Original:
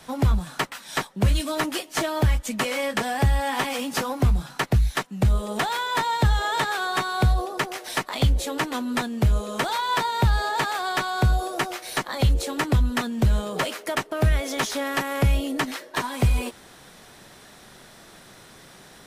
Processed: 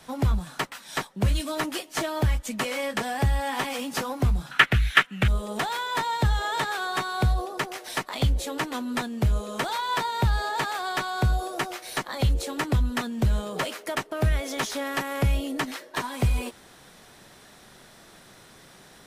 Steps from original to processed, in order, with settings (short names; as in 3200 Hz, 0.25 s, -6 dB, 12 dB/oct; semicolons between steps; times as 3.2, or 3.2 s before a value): 4.51–5.28 band shelf 2100 Hz +14.5 dB; gain -3 dB